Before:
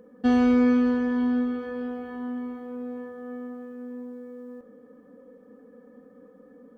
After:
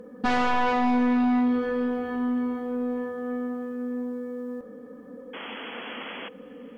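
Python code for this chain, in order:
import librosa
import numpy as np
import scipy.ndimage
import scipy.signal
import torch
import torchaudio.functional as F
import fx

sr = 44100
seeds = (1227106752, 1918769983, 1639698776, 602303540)

p1 = fx.fold_sine(x, sr, drive_db=11, ceiling_db=-12.0)
p2 = fx.spec_paint(p1, sr, seeds[0], shape='noise', start_s=5.33, length_s=0.96, low_hz=280.0, high_hz=3400.0, level_db=-31.0)
p3 = p2 + fx.echo_single(p2, sr, ms=599, db=-22.5, dry=0)
y = F.gain(torch.from_numpy(p3), -7.5).numpy()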